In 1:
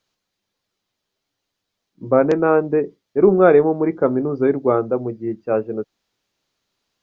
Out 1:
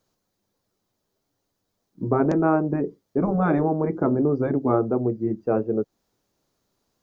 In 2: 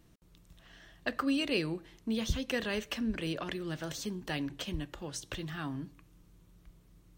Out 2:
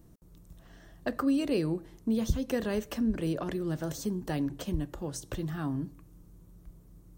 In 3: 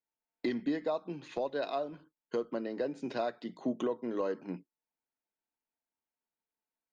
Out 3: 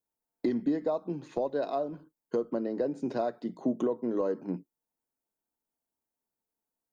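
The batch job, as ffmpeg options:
-filter_complex "[0:a]afftfilt=real='re*lt(hypot(re,im),1.12)':imag='im*lt(hypot(re,im),1.12)':win_size=1024:overlap=0.75,equalizer=f=2.8k:t=o:w=2.2:g=-14,asplit=2[a][b];[b]acompressor=threshold=-32dB:ratio=6,volume=1dB[c];[a][c]amix=inputs=2:normalize=0"

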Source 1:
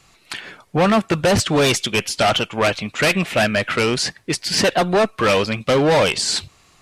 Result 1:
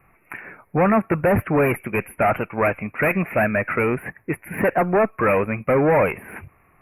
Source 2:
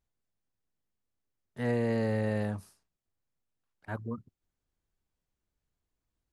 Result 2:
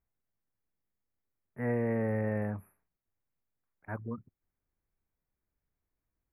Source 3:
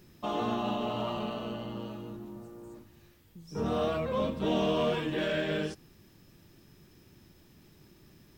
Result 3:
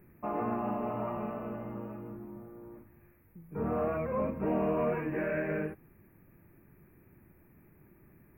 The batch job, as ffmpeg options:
-af "asuperstop=centerf=5500:order=20:qfactor=0.66,volume=-1.5dB"

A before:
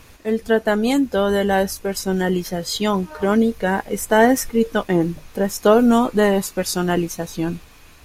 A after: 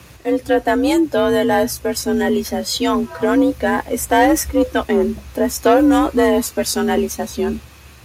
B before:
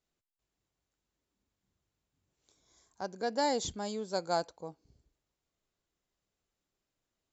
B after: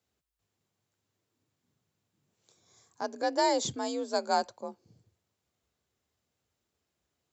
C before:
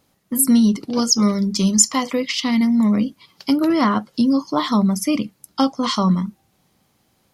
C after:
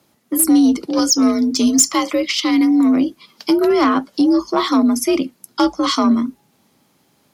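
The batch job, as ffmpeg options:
-af "acontrast=90,afreqshift=52,volume=-3.5dB"

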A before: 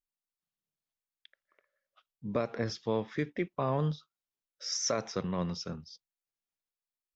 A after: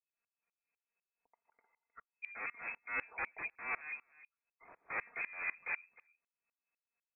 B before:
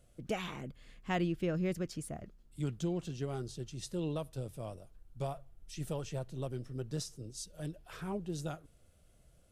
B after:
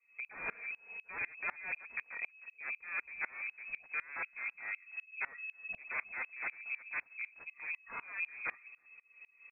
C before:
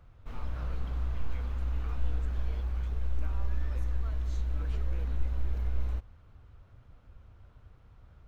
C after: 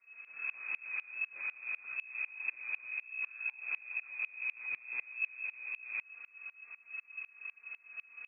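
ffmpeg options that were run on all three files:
-filter_complex "[0:a]aecho=1:1:4.2:0.7,areverse,acompressor=threshold=-33dB:ratio=8,areverse,aeval=exprs='0.0126*(abs(mod(val(0)/0.0126+3,4)-2)-1)':c=same,asplit=2[a][b];[b]aecho=0:1:310:0.0794[c];[a][c]amix=inputs=2:normalize=0,lowpass=f=2.2k:t=q:w=0.5098,lowpass=f=2.2k:t=q:w=0.6013,lowpass=f=2.2k:t=q:w=0.9,lowpass=f=2.2k:t=q:w=2.563,afreqshift=-2600,aeval=exprs='val(0)*pow(10,-26*if(lt(mod(-4*n/s,1),2*abs(-4)/1000),1-mod(-4*n/s,1)/(2*abs(-4)/1000),(mod(-4*n/s,1)-2*abs(-4)/1000)/(1-2*abs(-4)/1000))/20)':c=same,volume=10dB"

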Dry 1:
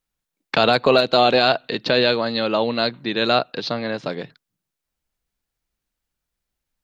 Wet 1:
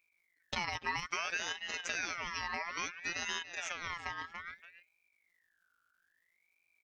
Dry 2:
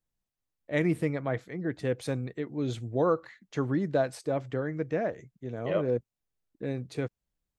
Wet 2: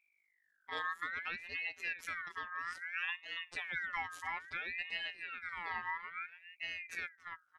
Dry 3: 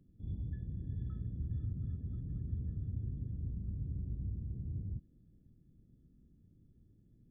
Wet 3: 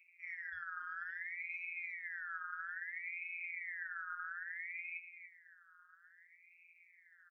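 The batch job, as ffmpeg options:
-filter_complex "[0:a]afftfilt=real='hypot(re,im)*cos(PI*b)':imag='0':win_size=1024:overlap=0.75,asplit=2[a][b];[b]adelay=285,lowpass=f=1.3k:p=1,volume=-10.5dB,asplit=2[c][d];[d]adelay=285,lowpass=f=1.3k:p=1,volume=0.18[e];[a][c][e]amix=inputs=3:normalize=0,acompressor=threshold=-40dB:ratio=3,aeval=exprs='val(0)+0.000141*(sin(2*PI*50*n/s)+sin(2*PI*2*50*n/s)/2+sin(2*PI*3*50*n/s)/3+sin(2*PI*4*50*n/s)/4+sin(2*PI*5*50*n/s)/5)':c=same,aeval=exprs='val(0)*sin(2*PI*1900*n/s+1900*0.25/0.6*sin(2*PI*0.6*n/s))':c=same,volume=3.5dB"

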